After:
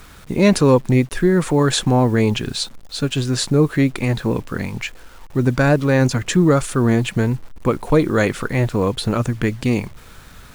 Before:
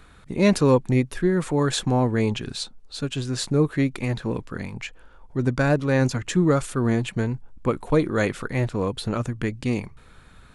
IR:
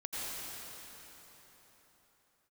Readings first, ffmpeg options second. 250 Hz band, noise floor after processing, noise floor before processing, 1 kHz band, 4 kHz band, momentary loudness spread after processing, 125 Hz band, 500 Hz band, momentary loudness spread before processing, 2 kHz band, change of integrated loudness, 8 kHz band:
+5.5 dB, -42 dBFS, -50 dBFS, +5.5 dB, +6.5 dB, 10 LU, +5.5 dB, +5.0 dB, 12 LU, +5.5 dB, +5.5 dB, +6.5 dB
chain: -filter_complex "[0:a]asplit=2[a][b];[b]alimiter=limit=-17dB:level=0:latency=1:release=107,volume=-1.5dB[c];[a][c]amix=inputs=2:normalize=0,acrusher=bits=7:mix=0:aa=0.000001,volume=2dB"

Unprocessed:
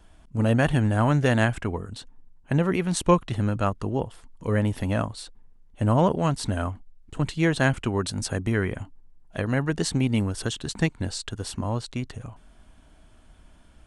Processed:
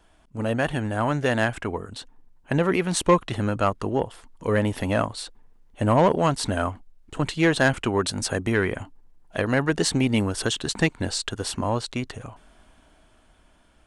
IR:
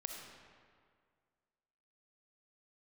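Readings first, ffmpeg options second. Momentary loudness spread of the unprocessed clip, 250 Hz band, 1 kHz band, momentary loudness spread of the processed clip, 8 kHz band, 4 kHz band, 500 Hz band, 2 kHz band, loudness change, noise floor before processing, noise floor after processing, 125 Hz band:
16 LU, +0.5 dB, +3.0 dB, 14 LU, +4.0 dB, +4.5 dB, +3.0 dB, +3.5 dB, +1.0 dB, -54 dBFS, -58 dBFS, -3.0 dB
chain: -af "bass=f=250:g=-8,treble=f=4k:g=-2,dynaudnorm=f=260:g=13:m=7.5dB,asoftclip=type=tanh:threshold=-9dB"

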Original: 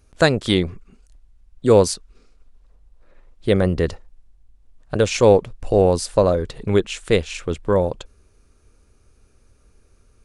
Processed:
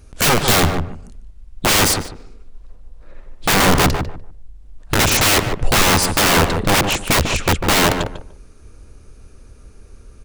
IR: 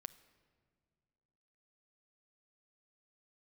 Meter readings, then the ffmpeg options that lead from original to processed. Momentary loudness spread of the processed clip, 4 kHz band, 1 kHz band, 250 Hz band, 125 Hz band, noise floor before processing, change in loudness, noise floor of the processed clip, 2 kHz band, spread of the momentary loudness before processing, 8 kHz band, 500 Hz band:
11 LU, +11.5 dB, +9.0 dB, +1.5 dB, +3.0 dB, -57 dBFS, +4.0 dB, -44 dBFS, +11.5 dB, 12 LU, +14.0 dB, -4.5 dB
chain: -filter_complex "[0:a]aeval=exprs='(mod(8.41*val(0)+1,2)-1)/8.41':c=same,lowshelf=f=330:g=3.5,asplit=2[a][b];[b]adelay=148,lowpass=f=1.3k:p=1,volume=-5dB,asplit=2[c][d];[d]adelay=148,lowpass=f=1.3k:p=1,volume=0.21,asplit=2[e][f];[f]adelay=148,lowpass=f=1.3k:p=1,volume=0.21[g];[a][c][e][g]amix=inputs=4:normalize=0,volume=9dB"

